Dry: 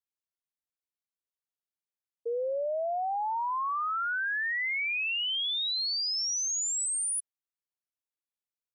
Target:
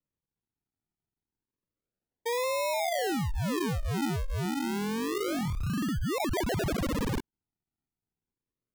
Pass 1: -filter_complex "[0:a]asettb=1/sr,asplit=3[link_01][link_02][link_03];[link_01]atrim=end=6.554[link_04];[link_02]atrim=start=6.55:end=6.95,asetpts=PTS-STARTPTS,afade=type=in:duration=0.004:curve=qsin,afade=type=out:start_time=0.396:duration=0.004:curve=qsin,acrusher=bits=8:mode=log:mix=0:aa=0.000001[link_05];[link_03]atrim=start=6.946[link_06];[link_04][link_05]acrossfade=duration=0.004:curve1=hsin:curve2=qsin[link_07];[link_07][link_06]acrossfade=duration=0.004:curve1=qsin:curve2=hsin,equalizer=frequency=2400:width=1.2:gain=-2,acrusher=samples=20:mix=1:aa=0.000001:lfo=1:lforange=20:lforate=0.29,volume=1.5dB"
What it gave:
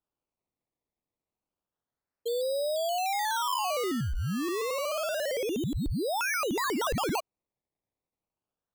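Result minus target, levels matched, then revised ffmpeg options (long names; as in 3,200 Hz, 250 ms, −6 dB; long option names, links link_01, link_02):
sample-and-hold swept by an LFO: distortion −13 dB
-filter_complex "[0:a]asettb=1/sr,asplit=3[link_01][link_02][link_03];[link_01]atrim=end=6.554[link_04];[link_02]atrim=start=6.55:end=6.95,asetpts=PTS-STARTPTS,afade=type=in:duration=0.004:curve=qsin,afade=type=out:start_time=0.396:duration=0.004:curve=qsin,acrusher=bits=8:mode=log:mix=0:aa=0.000001[link_05];[link_03]atrim=start=6.946[link_06];[link_04][link_05]acrossfade=duration=0.004:curve1=hsin:curve2=qsin[link_07];[link_07][link_06]acrossfade=duration=0.004:curve1=qsin:curve2=hsin,equalizer=frequency=2400:width=1.2:gain=-2,acrusher=samples=55:mix=1:aa=0.000001:lfo=1:lforange=55:lforate=0.29,volume=1.5dB"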